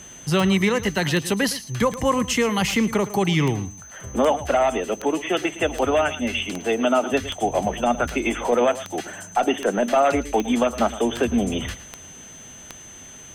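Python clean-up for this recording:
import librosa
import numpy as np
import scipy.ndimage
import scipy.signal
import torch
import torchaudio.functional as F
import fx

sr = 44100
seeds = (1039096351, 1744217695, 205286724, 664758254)

y = fx.fix_declick_ar(x, sr, threshold=10.0)
y = fx.notch(y, sr, hz=6200.0, q=30.0)
y = fx.fix_echo_inverse(y, sr, delay_ms=112, level_db=-15.5)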